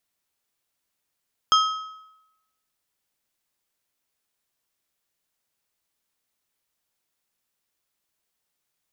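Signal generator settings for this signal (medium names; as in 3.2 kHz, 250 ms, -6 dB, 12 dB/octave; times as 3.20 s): metal hit plate, lowest mode 1.28 kHz, modes 4, decay 0.91 s, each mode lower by 5 dB, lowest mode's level -13.5 dB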